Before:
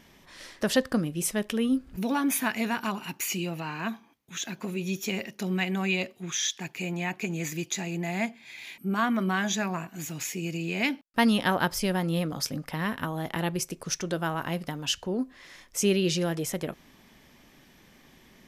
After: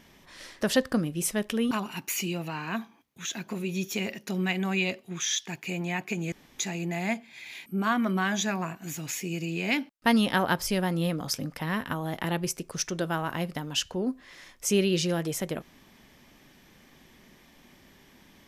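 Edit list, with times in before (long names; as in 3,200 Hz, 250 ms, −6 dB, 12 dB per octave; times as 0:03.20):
0:01.71–0:02.83: remove
0:07.44–0:07.71: fill with room tone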